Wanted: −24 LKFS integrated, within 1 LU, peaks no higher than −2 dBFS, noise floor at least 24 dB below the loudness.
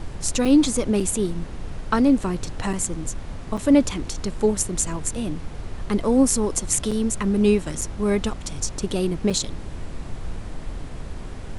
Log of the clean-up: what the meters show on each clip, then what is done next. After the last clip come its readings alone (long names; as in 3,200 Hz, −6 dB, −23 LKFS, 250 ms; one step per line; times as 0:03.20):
number of dropouts 7; longest dropout 5.7 ms; background noise floor −35 dBFS; target noise floor −47 dBFS; integrated loudness −22.5 LKFS; sample peak −3.0 dBFS; target loudness −24.0 LKFS
→ repair the gap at 0:00.45/0:01.00/0:02.73/0:03.57/0:06.91/0:07.81/0:09.30, 5.7 ms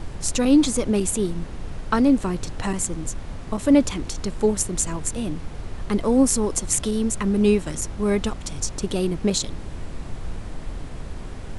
number of dropouts 0; background noise floor −35 dBFS; target noise floor −47 dBFS
→ noise reduction from a noise print 12 dB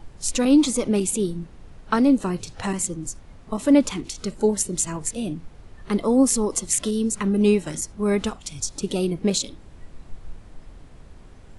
background noise floor −46 dBFS; target noise floor −47 dBFS
→ noise reduction from a noise print 6 dB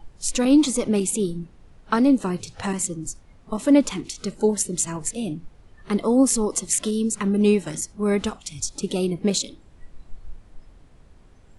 background noise floor −51 dBFS; integrated loudness −22.5 LKFS; sample peak −3.5 dBFS; target loudness −24.0 LKFS
→ level −1.5 dB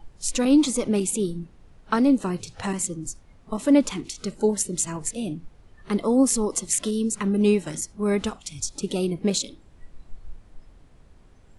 integrated loudness −24.0 LKFS; sample peak −5.0 dBFS; background noise floor −53 dBFS